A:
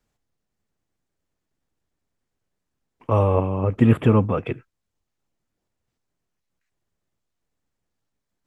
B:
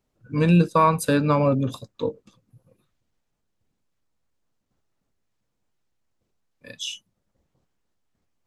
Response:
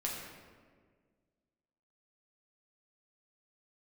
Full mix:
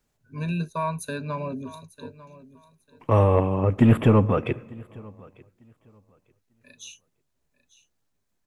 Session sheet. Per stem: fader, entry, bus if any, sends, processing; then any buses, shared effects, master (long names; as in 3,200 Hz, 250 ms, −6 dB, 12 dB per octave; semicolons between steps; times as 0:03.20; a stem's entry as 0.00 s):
+0.5 dB, 0.00 s, send −22 dB, echo send −24 dB, soft clipping −8 dBFS, distortion −17 dB
−13.5 dB, 0.00 s, no send, echo send −17 dB, EQ curve with evenly spaced ripples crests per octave 1.5, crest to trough 15 dB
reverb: on, RT60 1.7 s, pre-delay 6 ms
echo: repeating echo 897 ms, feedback 20%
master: high-shelf EQ 7,800 Hz +5 dB